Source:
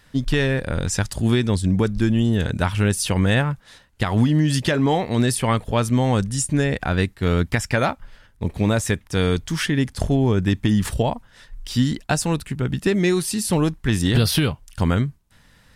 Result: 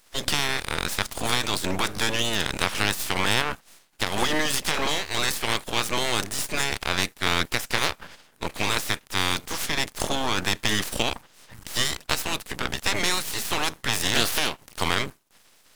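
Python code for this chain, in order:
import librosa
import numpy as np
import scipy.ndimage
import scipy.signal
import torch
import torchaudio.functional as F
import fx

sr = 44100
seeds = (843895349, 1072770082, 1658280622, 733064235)

y = fx.spec_clip(x, sr, under_db=29)
y = fx.highpass(y, sr, hz=90.0, slope=6)
y = np.maximum(y, 0.0)
y = F.gain(torch.from_numpy(y), -1.0).numpy()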